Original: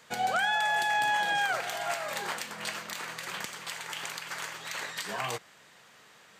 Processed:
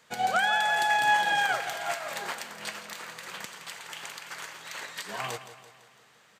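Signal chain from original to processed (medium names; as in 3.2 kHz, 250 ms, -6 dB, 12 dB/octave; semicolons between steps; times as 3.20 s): on a send: feedback delay 168 ms, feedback 53%, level -10 dB; on the sum: upward expansion 1.5:1, over -39 dBFS; trim +3.5 dB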